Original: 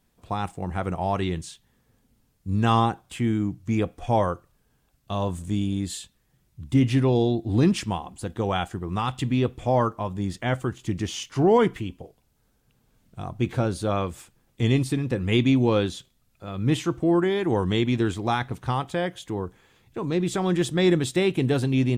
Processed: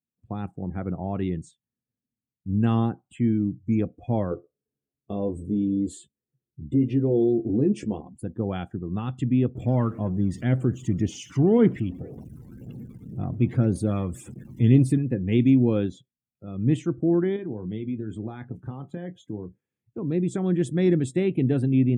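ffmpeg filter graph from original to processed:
-filter_complex "[0:a]asettb=1/sr,asplit=3[s0][s1][s2];[s0]atrim=end=4.314[s3];[s1]atrim=start=4.31:end=8.01,asetpts=PTS-STARTPTS,afade=t=in:d=0.004:c=qsin,afade=t=out:st=3.696:d=0.004:c=qsin,asplit=2[s4][s5];[s5]adelay=14,volume=0.562[s6];[s4][s6]amix=inputs=2:normalize=0,atrim=end_sample=163170,acompressor=threshold=0.0316:ratio=2:attack=3.2:release=140:knee=1:detection=peak,equalizer=f=430:w=1.3:g=12.5[s7];[s2]atrim=start=8.006[s8];[s3][s7]acrossfade=d=0.004:c1=hsin:c2=qsin[s9];[s9][s8]acrossfade=d=0.004:c1=qsin:c2=hsin,asettb=1/sr,asplit=3[s10][s11][s12];[s10]atrim=end=9.554[s13];[s11]atrim=start=9.55:end=14.98,asetpts=PTS-STARTPTS,afade=t=in:d=0.004:c=qsin,afade=t=out:st=5.426:d=0.004:c=qsin,aeval=exprs='val(0)+0.5*0.0211*sgn(val(0))':c=same,aphaser=in_gain=1:out_gain=1:delay=1.1:decay=0.34:speed=1.9:type=triangular[s14];[s12]atrim=start=14.976[s15];[s13][s14]acrossfade=d=0.004:c1=hsin:c2=qsin[s16];[s16][s15]acrossfade=d=0.004:c1=qsin:c2=hsin,asettb=1/sr,asplit=3[s17][s18][s19];[s17]atrim=end=17.364[s20];[s18]atrim=start=17.36:end=19.98,asetpts=PTS-STARTPTS,afade=t=in:d=0.004:c=qsin,afade=t=out:st=2.616:d=0.004:c=qsin,highpass=f=54:w=0.5412,highpass=f=54:w=1.3066,acompressor=threshold=0.0398:ratio=6:attack=3.2:release=140:knee=1:detection=peak,asplit=2[s21][s22];[s22]adelay=28,volume=0.355[s23];[s21][s23]amix=inputs=2:normalize=0,atrim=end_sample=115542[s24];[s19]atrim=start=19.976[s25];[s20][s24]acrossfade=d=0.004:c1=hsin:c2=qsin[s26];[s26][s25]acrossfade=d=0.004:c1=qsin:c2=hsin,highpass=81,afftdn=nr=25:nf=-40,equalizer=f=125:t=o:w=1:g=4,equalizer=f=250:t=o:w=1:g=6,equalizer=f=1000:t=o:w=1:g=-10,equalizer=f=4000:t=o:w=1:g=-11,volume=0.668"

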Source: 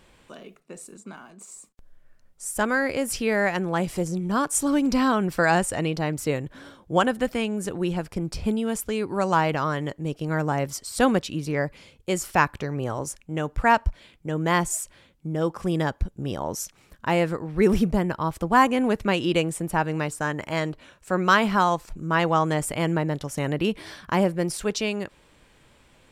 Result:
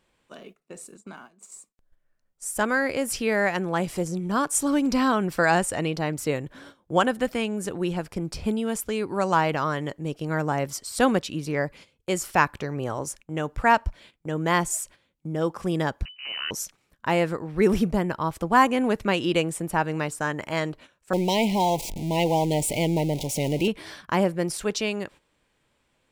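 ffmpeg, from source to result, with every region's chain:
-filter_complex "[0:a]asettb=1/sr,asplit=3[s0][s1][s2];[s0]atrim=end=16.054[s3];[s1]atrim=start=16.05:end=16.51,asetpts=PTS-STARTPTS,afade=t=in:d=0.004:c=qsin,afade=t=out:st=0.456:d=0.004:c=qsin,lowshelf=f=180:g=-11.5,aeval=exprs='abs(val(0))':c=same,lowpass=f=2600:t=q:w=0.5098,lowpass=f=2600:t=q:w=0.6013,lowpass=f=2600:t=q:w=0.9,lowpass=f=2600:t=q:w=2.563,afreqshift=-3000[s4];[s2]atrim=start=16.506[s5];[s3][s4]acrossfade=d=0.004:c1=hsin:c2=qsin[s6];[s6][s5]acrossfade=d=0.004:c1=qsin:c2=hsin,asettb=1/sr,asplit=3[s7][s8][s9];[s7]atrim=end=21.134[s10];[s8]atrim=start=21.13:end=23.68,asetpts=PTS-STARTPTS,afade=t=in:d=0.004:c=qsin,afade=t=out:st=2.546:d=0.004:c=qsin,aeval=exprs='val(0)+0.5*0.0398*sgn(val(0))':c=same,asuperstop=centerf=1400:order=12:qfactor=1.2[s11];[s9]atrim=start=23.676[s12];[s10][s11]acrossfade=d=0.004:c1=hsin:c2=qsin[s13];[s13][s12]acrossfade=d=0.004:c1=qsin:c2=hsin,agate=range=0.251:threshold=0.00631:ratio=16:detection=peak,lowshelf=f=130:g=-5"

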